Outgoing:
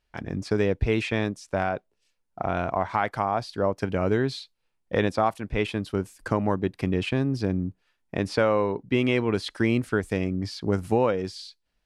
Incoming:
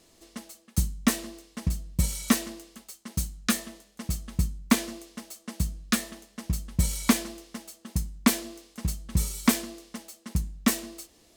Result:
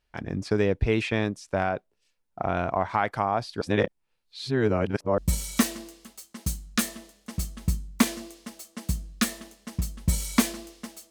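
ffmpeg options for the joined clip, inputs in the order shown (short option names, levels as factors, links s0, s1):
-filter_complex "[0:a]apad=whole_dur=11.1,atrim=end=11.1,asplit=2[s0][s1];[s0]atrim=end=3.612[s2];[s1]atrim=start=3.608:end=5.182,asetpts=PTS-STARTPTS,areverse[s3];[1:a]atrim=start=1.888:end=7.81[s4];[s2][s3]acrossfade=d=0.004:c1=hsin:c2=hsin[s5];[s5][s4]acrossfade=d=0.004:c1=hsin:c2=hsin"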